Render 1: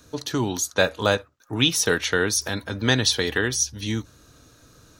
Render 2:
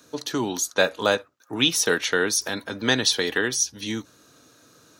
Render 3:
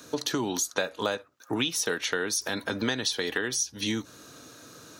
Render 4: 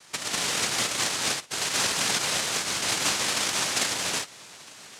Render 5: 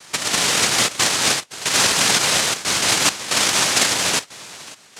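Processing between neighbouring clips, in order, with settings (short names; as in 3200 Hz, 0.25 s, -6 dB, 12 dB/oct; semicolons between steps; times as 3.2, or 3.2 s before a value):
HPF 200 Hz 12 dB/oct
compressor 6:1, threshold -32 dBFS, peak gain reduction 17 dB; gain +6 dB
non-linear reverb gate 0.25 s rising, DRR -5 dB; noise vocoder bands 1; gain -3 dB
step gate "xxxxxxxx.xxxx.." 136 bpm -12 dB; gain +9 dB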